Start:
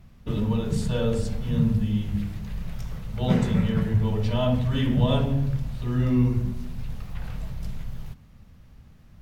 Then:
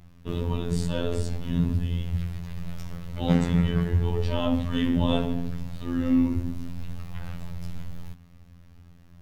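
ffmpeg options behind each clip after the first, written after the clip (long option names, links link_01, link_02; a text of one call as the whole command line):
ffmpeg -i in.wav -af "afftfilt=real='hypot(re,im)*cos(PI*b)':imag='0':win_size=2048:overlap=0.75,volume=3dB" out.wav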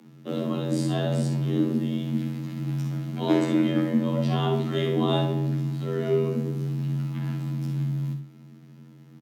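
ffmpeg -i in.wav -af "aecho=1:1:49|64:0.316|0.335,afreqshift=140" out.wav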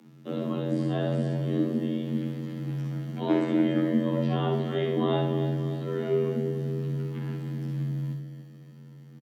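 ffmpeg -i in.wav -filter_complex "[0:a]acrossover=split=3300[link_01][link_02];[link_02]acompressor=threshold=-52dB:ratio=4:attack=1:release=60[link_03];[link_01][link_03]amix=inputs=2:normalize=0,aecho=1:1:291|582|873|1164|1455|1746|2037:0.299|0.173|0.1|0.0582|0.0338|0.0196|0.0114,volume=-2.5dB" out.wav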